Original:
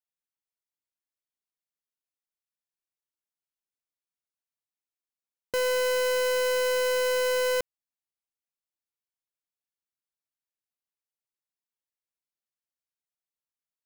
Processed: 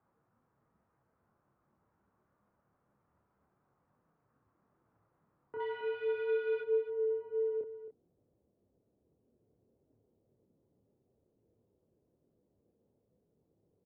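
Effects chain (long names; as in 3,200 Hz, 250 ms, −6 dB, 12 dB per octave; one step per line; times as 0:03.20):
brickwall limiter −35 dBFS, peak gain reduction 10 dB
background noise brown −61 dBFS
low-pass filter sweep 1,300 Hz → 520 Hz, 0:05.38–0:06.39
0:05.60–0:06.61: power curve on the samples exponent 0.5
multi-voice chorus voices 6, 0.42 Hz, delay 27 ms, depth 4 ms
single-tap delay 269 ms −12.5 dB
single-sideband voice off tune −62 Hz 160–3,300 Hz
level −2.5 dB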